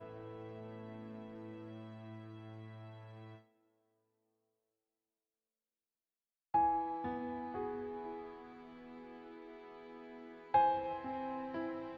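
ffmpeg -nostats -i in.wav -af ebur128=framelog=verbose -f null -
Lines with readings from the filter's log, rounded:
Integrated loudness:
  I:         -39.3 LUFS
  Threshold: -51.2 LUFS
Loudness range:
  LRA:        17.0 LU
  Threshold: -62.9 LUFS
  LRA low:   -56.5 LUFS
  LRA high:  -39.5 LUFS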